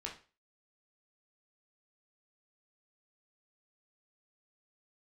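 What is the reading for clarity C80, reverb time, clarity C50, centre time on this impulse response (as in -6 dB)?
15.5 dB, 0.35 s, 9.0 dB, 21 ms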